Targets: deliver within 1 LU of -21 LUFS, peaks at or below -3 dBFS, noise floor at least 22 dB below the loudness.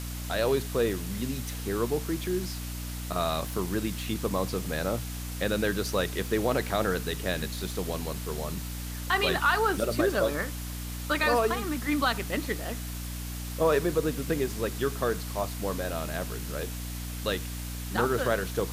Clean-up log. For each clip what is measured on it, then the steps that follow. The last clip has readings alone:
hum 60 Hz; highest harmonic 300 Hz; hum level -34 dBFS; noise floor -36 dBFS; noise floor target -52 dBFS; loudness -29.5 LUFS; peak level -13.5 dBFS; loudness target -21.0 LUFS
-> de-hum 60 Hz, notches 5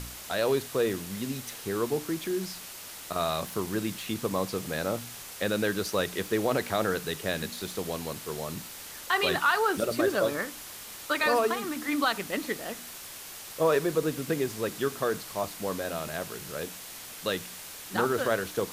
hum not found; noise floor -43 dBFS; noise floor target -52 dBFS
-> noise reduction 9 dB, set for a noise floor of -43 dBFS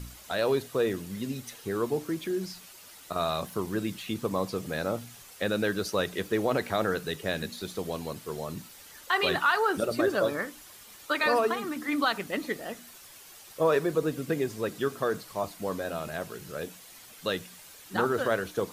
noise floor -50 dBFS; noise floor target -52 dBFS
-> noise reduction 6 dB, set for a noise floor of -50 dBFS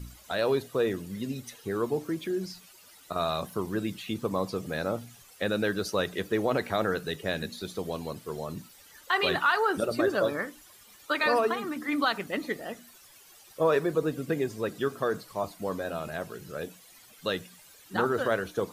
noise floor -55 dBFS; loudness -30.0 LUFS; peak level -14.0 dBFS; loudness target -21.0 LUFS
-> trim +9 dB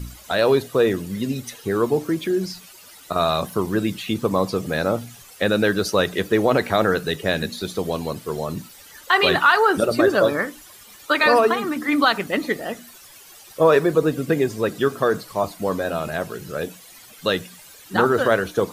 loudness -21.0 LUFS; peak level -5.0 dBFS; noise floor -46 dBFS

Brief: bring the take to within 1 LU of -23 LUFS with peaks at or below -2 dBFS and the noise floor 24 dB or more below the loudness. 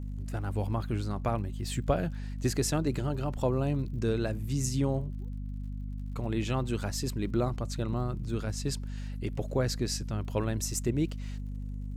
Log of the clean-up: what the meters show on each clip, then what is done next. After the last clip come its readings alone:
tick rate 55 per s; hum 50 Hz; highest harmonic 250 Hz; hum level -34 dBFS; loudness -32.5 LUFS; peak level -14.5 dBFS; loudness target -23.0 LUFS
-> de-click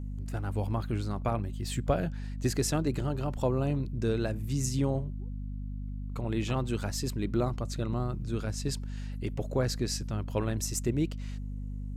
tick rate 0.25 per s; hum 50 Hz; highest harmonic 250 Hz; hum level -34 dBFS
-> hum notches 50/100/150/200/250 Hz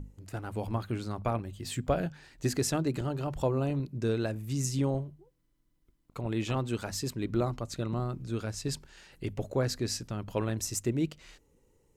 hum not found; loudness -33.0 LUFS; peak level -16.0 dBFS; loudness target -23.0 LUFS
-> trim +10 dB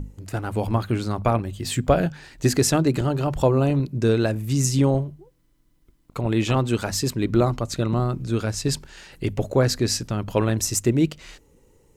loudness -23.0 LUFS; peak level -6.0 dBFS; noise floor -61 dBFS

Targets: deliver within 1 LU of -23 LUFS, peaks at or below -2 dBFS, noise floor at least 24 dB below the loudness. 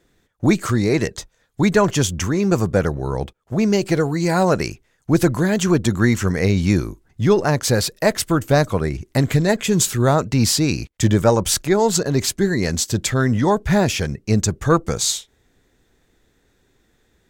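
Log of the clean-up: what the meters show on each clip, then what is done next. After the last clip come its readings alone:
loudness -19.0 LUFS; peak level -3.5 dBFS; loudness target -23.0 LUFS
-> trim -4 dB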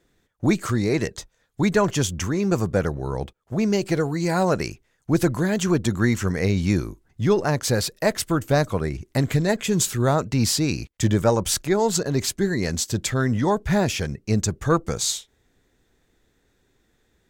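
loudness -23.0 LUFS; peak level -7.5 dBFS; noise floor -67 dBFS

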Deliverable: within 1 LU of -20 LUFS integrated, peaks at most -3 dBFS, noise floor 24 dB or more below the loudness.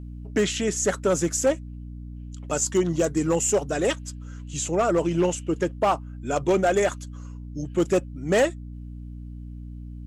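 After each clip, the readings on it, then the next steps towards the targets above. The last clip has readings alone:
clipped samples 0.9%; clipping level -14.5 dBFS; hum 60 Hz; highest harmonic 300 Hz; hum level -35 dBFS; loudness -24.5 LUFS; peak level -14.5 dBFS; loudness target -20.0 LUFS
-> clip repair -14.5 dBFS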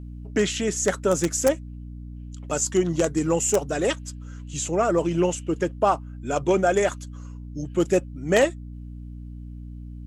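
clipped samples 0.0%; hum 60 Hz; highest harmonic 300 Hz; hum level -35 dBFS
-> hum notches 60/120/180/240/300 Hz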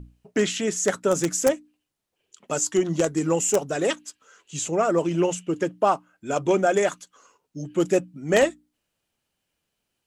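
hum not found; loudness -24.0 LUFS; peak level -5.0 dBFS; loudness target -20.0 LUFS
-> trim +4 dB; peak limiter -3 dBFS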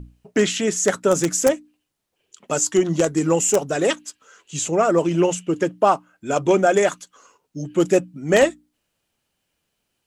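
loudness -20.0 LUFS; peak level -3.0 dBFS; noise floor -76 dBFS

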